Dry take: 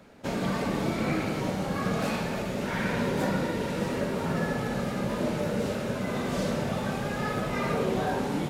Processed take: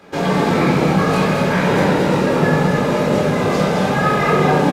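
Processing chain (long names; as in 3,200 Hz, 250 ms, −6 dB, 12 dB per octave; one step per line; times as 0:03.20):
high-pass filter 230 Hz 6 dB per octave
high-shelf EQ 7,100 Hz −6 dB
tempo change 1.8×
on a send: loudspeakers that aren't time-aligned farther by 45 metres −12 dB, 75 metres −5 dB
on the sum: rectangular room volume 740 cubic metres, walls furnished, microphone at 3.9 metres
level +8.5 dB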